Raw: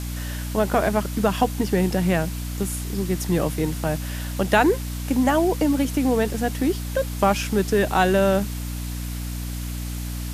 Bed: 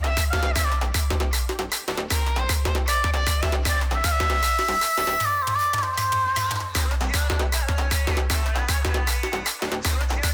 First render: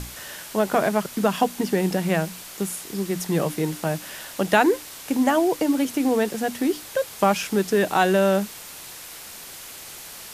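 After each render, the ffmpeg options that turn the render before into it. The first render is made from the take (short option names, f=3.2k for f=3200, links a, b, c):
-af "bandreject=f=60:t=h:w=6,bandreject=f=120:t=h:w=6,bandreject=f=180:t=h:w=6,bandreject=f=240:t=h:w=6,bandreject=f=300:t=h:w=6"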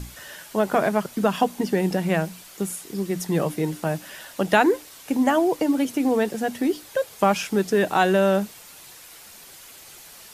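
-af "afftdn=nr=7:nf=-40"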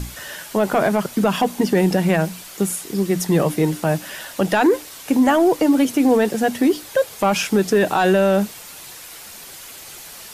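-af "acontrast=80,alimiter=limit=-8dB:level=0:latency=1:release=30"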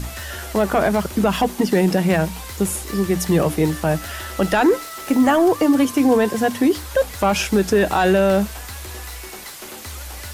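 -filter_complex "[1:a]volume=-12dB[a];[0:a][a]amix=inputs=2:normalize=0"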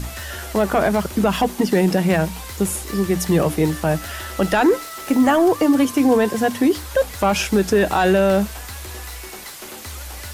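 -af anull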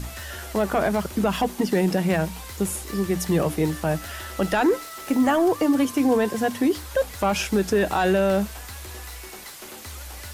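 -af "volume=-4.5dB"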